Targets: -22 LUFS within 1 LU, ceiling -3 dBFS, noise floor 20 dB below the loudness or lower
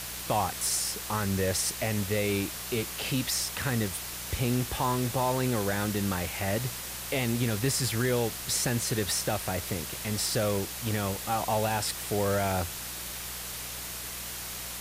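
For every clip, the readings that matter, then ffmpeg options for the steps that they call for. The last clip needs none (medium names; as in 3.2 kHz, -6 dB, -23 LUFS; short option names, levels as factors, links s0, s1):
hum 60 Hz; highest harmonic 180 Hz; hum level -48 dBFS; noise floor -38 dBFS; noise floor target -50 dBFS; loudness -29.5 LUFS; peak level -14.5 dBFS; loudness target -22.0 LUFS
-> -af "bandreject=f=60:t=h:w=4,bandreject=f=120:t=h:w=4,bandreject=f=180:t=h:w=4"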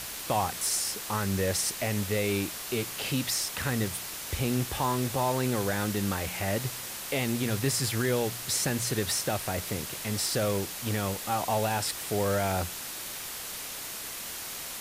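hum not found; noise floor -39 dBFS; noise floor target -50 dBFS
-> -af "afftdn=nr=11:nf=-39"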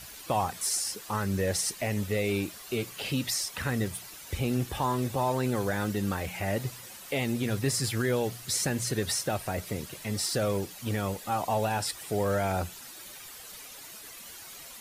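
noise floor -46 dBFS; noise floor target -50 dBFS
-> -af "afftdn=nr=6:nf=-46"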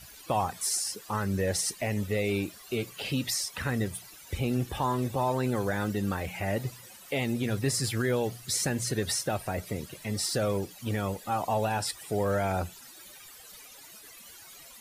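noise floor -50 dBFS; noise floor target -51 dBFS
-> -af "afftdn=nr=6:nf=-50"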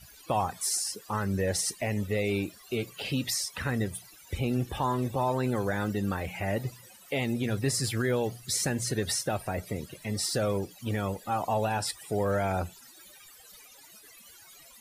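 noise floor -53 dBFS; loudness -30.5 LUFS; peak level -16.5 dBFS; loudness target -22.0 LUFS
-> -af "volume=2.66"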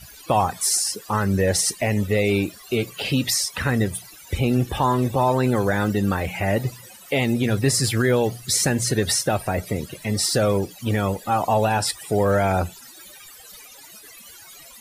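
loudness -22.0 LUFS; peak level -8.0 dBFS; noise floor -45 dBFS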